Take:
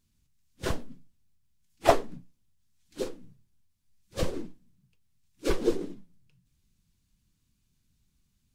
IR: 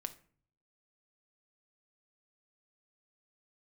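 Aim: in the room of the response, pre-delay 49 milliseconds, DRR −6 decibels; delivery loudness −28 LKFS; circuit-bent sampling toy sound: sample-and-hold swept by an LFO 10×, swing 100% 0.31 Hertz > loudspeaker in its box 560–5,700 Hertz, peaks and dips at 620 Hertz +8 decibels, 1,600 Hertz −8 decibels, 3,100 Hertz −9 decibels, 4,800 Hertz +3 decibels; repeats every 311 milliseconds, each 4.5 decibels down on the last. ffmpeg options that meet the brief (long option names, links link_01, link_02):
-filter_complex "[0:a]aecho=1:1:311|622|933|1244|1555|1866|2177|2488|2799:0.596|0.357|0.214|0.129|0.0772|0.0463|0.0278|0.0167|0.01,asplit=2[link_01][link_02];[1:a]atrim=start_sample=2205,adelay=49[link_03];[link_02][link_03]afir=irnorm=-1:irlink=0,volume=8dB[link_04];[link_01][link_04]amix=inputs=2:normalize=0,acrusher=samples=10:mix=1:aa=0.000001:lfo=1:lforange=10:lforate=0.31,highpass=560,equalizer=frequency=620:width_type=q:width=4:gain=8,equalizer=frequency=1600:width_type=q:width=4:gain=-8,equalizer=frequency=3100:width_type=q:width=4:gain=-9,equalizer=frequency=4800:width_type=q:width=4:gain=3,lowpass=frequency=5700:width=0.5412,lowpass=frequency=5700:width=1.3066,volume=-3dB"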